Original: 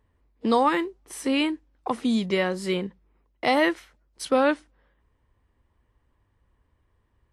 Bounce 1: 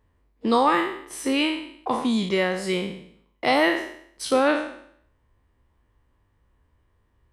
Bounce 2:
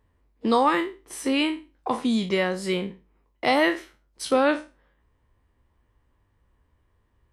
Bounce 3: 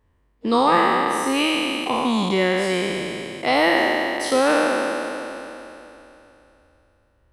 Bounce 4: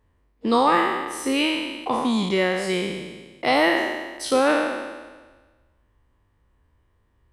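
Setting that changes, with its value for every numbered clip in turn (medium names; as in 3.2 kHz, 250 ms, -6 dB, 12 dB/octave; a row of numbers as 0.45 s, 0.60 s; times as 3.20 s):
spectral sustain, RT60: 0.65 s, 0.3 s, 3.07 s, 1.36 s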